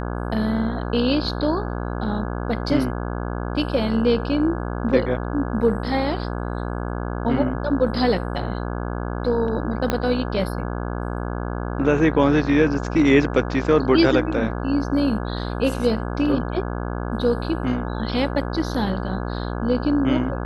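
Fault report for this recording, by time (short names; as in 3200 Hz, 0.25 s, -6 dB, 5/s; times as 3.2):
buzz 60 Hz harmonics 28 -27 dBFS
9.9 pop -7 dBFS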